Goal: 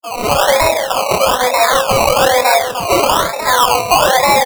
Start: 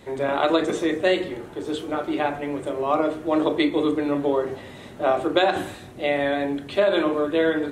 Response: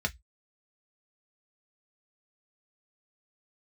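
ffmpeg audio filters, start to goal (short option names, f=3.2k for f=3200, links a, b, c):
-filter_complex "[0:a]highshelf=f=2.7k:g=-11,asplit=2[a][b];[b]adelay=48,volume=-5dB[c];[a][c]amix=inputs=2:normalize=0,asetrate=76440,aresample=44100,afftfilt=real='re*gte(hypot(re,im),0.0282)':imag='im*gte(hypot(re,im),0.0282)':win_size=1024:overlap=0.75,highpass=630,flanger=delay=3.9:depth=5.4:regen=43:speed=0.27:shape=triangular,asplit=2[d][e];[e]acompressor=threshold=-40dB:ratio=4,volume=-1dB[f];[d][f]amix=inputs=2:normalize=0,alimiter=limit=-20dB:level=0:latency=1:release=29,asplit=2[g][h];[h]aecho=0:1:302|604|906:0.355|0.0887|0.0222[i];[g][i]amix=inputs=2:normalize=0,adynamicequalizer=threshold=0.00447:dfrequency=1300:dqfactor=7.6:tfrequency=1300:tqfactor=7.6:attack=5:release=100:ratio=0.375:range=3:mode=cutabove:tftype=bell,acrusher=samples=20:mix=1:aa=0.000001:lfo=1:lforange=12:lforate=1.1,dynaudnorm=f=170:g=3:m=13.5dB,volume=3.5dB"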